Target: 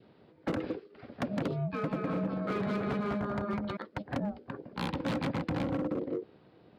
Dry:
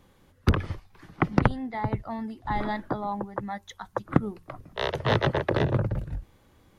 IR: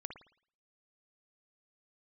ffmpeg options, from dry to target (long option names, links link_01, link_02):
-filter_complex "[0:a]aeval=exprs='val(0)*sin(2*PI*410*n/s)':channel_layout=same,adynamicequalizer=threshold=0.00891:dfrequency=990:dqfactor=1.7:tfrequency=990:tqfactor=1.7:attack=5:release=100:ratio=0.375:range=2.5:mode=cutabove:tftype=bell,asettb=1/sr,asplit=3[link_01][link_02][link_03];[link_01]atrim=end=1.634[link_04];[link_02]atrim=start=1.63:end=3.77,asetpts=PTS-STARTPTS,afade=type=in:duration=0.004:curve=qsin,afade=type=out:start_time=2.136:duration=0.004:curve=qsin,aecho=1:1:200|320|392|435.2|461.1:0.631|0.398|0.251|0.158|0.1,atrim=end_sample=94374[link_05];[link_03]atrim=start=3.766[link_06];[link_04][link_05]acrossfade=duration=0.004:curve1=hsin:curve2=qsin[link_07];[link_07][link_06]acrossfade=duration=0.004:curve1=qsin:curve2=hsin,asoftclip=type=tanh:threshold=-22.5dB,aresample=11025,aresample=44100,asoftclip=type=hard:threshold=-28.5dB,highpass=160,bass=frequency=250:gain=14,treble=frequency=4000:gain=-1,acompressor=threshold=-28dB:ratio=6"